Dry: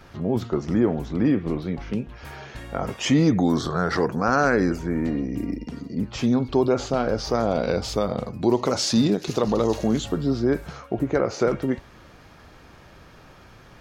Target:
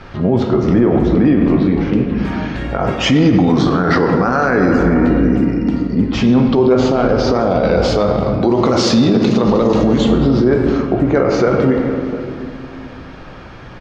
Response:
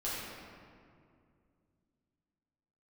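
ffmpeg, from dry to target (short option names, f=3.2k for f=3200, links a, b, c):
-filter_complex "[0:a]lowpass=4k,asplit=2[a][b];[b]adelay=699.7,volume=-20dB,highshelf=f=4k:g=-15.7[c];[a][c]amix=inputs=2:normalize=0,asplit=2[d][e];[1:a]atrim=start_sample=2205,adelay=16[f];[e][f]afir=irnorm=-1:irlink=0,volume=-8.5dB[g];[d][g]amix=inputs=2:normalize=0,alimiter=level_in=14.5dB:limit=-1dB:release=50:level=0:latency=1,volume=-3dB"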